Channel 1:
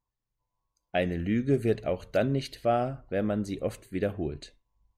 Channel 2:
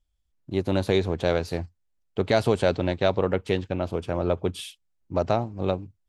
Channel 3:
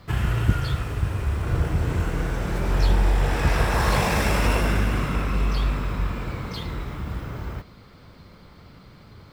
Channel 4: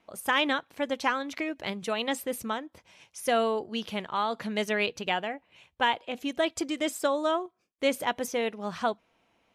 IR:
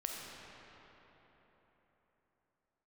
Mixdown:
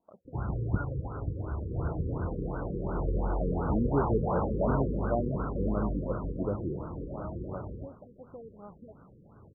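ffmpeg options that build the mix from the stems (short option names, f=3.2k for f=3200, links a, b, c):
-filter_complex "[0:a]tiltshelf=f=790:g=5,adelay=2450,volume=-7dB,asplit=3[a][b][c];[b]volume=-22dB[d];[c]volume=-13.5dB[e];[1:a]tiltshelf=f=1.4k:g=-7.5,acompressor=threshold=-36dB:ratio=8,adelay=1850,volume=1.5dB,asplit=2[f][g];[g]volume=-8dB[h];[2:a]lowshelf=f=97:g=-9.5,adelay=250,volume=-4.5dB[i];[3:a]acompressor=threshold=-34dB:ratio=5,volume=-9dB,asplit=2[j][k];[k]apad=whole_len=349928[l];[f][l]sidechaincompress=threshold=-56dB:ratio=8:attack=16:release=270[m];[4:a]atrim=start_sample=2205[n];[d][h]amix=inputs=2:normalize=0[o];[o][n]afir=irnorm=-1:irlink=0[p];[e]aecho=0:1:700:1[q];[a][m][i][j][p][q]amix=inputs=6:normalize=0,afftfilt=real='re*lt(b*sr/1024,510*pow(1600/510,0.5+0.5*sin(2*PI*2.8*pts/sr)))':imag='im*lt(b*sr/1024,510*pow(1600/510,0.5+0.5*sin(2*PI*2.8*pts/sr)))':win_size=1024:overlap=0.75"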